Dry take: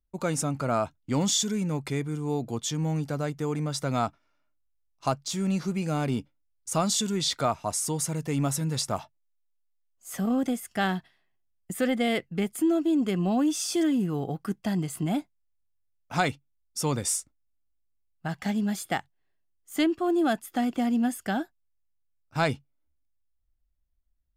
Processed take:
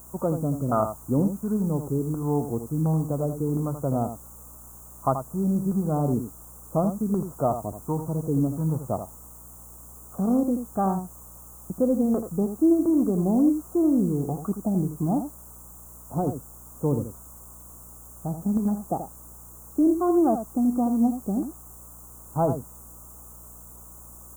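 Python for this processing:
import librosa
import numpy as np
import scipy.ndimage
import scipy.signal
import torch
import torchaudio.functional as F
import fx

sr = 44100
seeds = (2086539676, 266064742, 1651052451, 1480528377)

p1 = fx.filter_lfo_lowpass(x, sr, shape='saw_down', hz=1.4, low_hz=290.0, high_hz=1500.0, q=1.2)
p2 = fx.add_hum(p1, sr, base_hz=60, snr_db=26)
p3 = fx.quant_dither(p2, sr, seeds[0], bits=6, dither='triangular')
p4 = p2 + (p3 * librosa.db_to_amplitude(-9.0))
p5 = scipy.signal.sosfilt(scipy.signal.ellip(3, 1.0, 40, [1200.0, 7100.0], 'bandstop', fs=sr, output='sos'), p4)
p6 = p5 + fx.echo_single(p5, sr, ms=82, db=-9.0, dry=0)
y = fx.doppler_dist(p6, sr, depth_ms=0.11)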